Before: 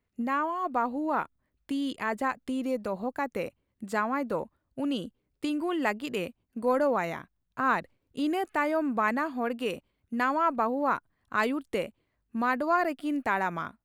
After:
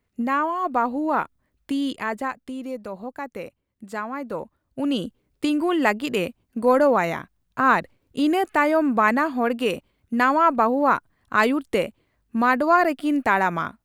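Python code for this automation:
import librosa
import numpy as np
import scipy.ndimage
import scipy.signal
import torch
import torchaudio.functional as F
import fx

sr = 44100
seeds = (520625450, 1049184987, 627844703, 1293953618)

y = fx.gain(x, sr, db=fx.line((1.85, 6.0), (2.53, -1.5), (4.14, -1.5), (5.05, 8.0)))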